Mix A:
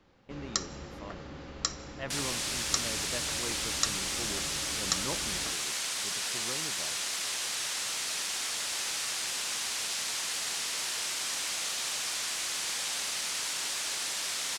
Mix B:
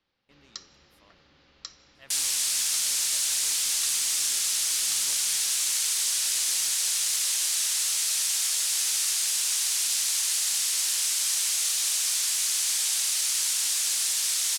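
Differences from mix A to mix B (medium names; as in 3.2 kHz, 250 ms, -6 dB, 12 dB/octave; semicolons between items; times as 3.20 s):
first sound: add low-pass 4.8 kHz 24 dB/octave; second sound +10.0 dB; master: add pre-emphasis filter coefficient 0.9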